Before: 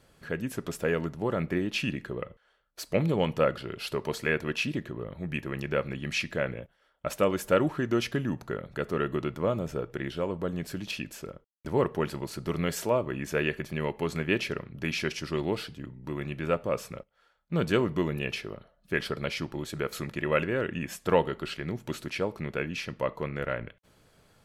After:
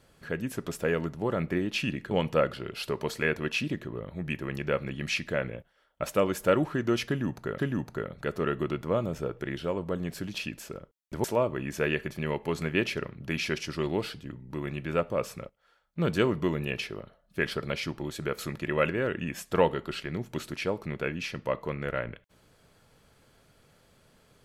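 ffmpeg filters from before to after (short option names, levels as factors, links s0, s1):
-filter_complex "[0:a]asplit=4[s0][s1][s2][s3];[s0]atrim=end=2.112[s4];[s1]atrim=start=3.148:end=8.622[s5];[s2]atrim=start=8.108:end=11.772[s6];[s3]atrim=start=12.778[s7];[s4][s5]acrossfade=d=0.004:c1=hsin:c2=hsin[s8];[s8][s6]acrossfade=d=0.004:c1=hsin:c2=hsin[s9];[s9][s7]acrossfade=d=0.004:c1=hsin:c2=hsin"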